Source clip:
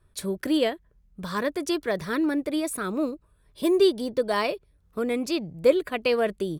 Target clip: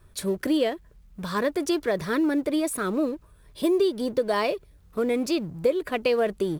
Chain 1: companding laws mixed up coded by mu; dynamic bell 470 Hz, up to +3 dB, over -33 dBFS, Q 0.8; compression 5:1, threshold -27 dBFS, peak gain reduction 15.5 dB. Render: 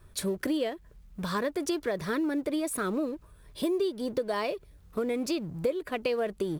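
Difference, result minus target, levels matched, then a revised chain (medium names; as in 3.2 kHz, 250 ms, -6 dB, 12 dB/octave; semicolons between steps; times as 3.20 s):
compression: peak gain reduction +6.5 dB
companding laws mixed up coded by mu; dynamic bell 470 Hz, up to +3 dB, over -33 dBFS, Q 0.8; compression 5:1, threshold -19 dBFS, peak gain reduction 9 dB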